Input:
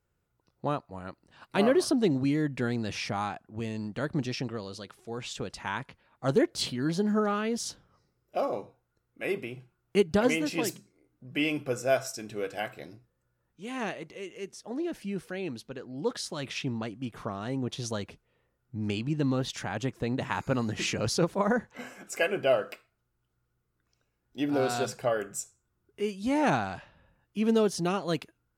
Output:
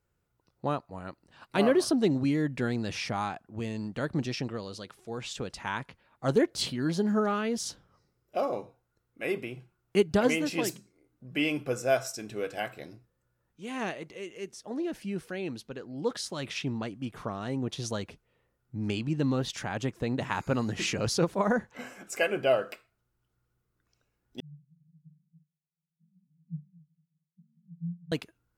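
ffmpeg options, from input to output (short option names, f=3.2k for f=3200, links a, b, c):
-filter_complex "[0:a]asettb=1/sr,asplit=3[a][b][c];[a]atrim=end=24.404[d];[b]atrim=start=24.4:end=28.12,asetpts=PTS-STARTPTS,afade=t=in:d=0.004:c=qsin,afade=t=out:st=3.716:d=0.004:c=qsin,asuperpass=centerf=160:order=8:qfactor=5.8[e];[c]atrim=start=28.116[f];[d][e]acrossfade=d=0.004:c1=hsin:c2=qsin[g];[g][f]acrossfade=d=0.004:c1=qsin:c2=hsin"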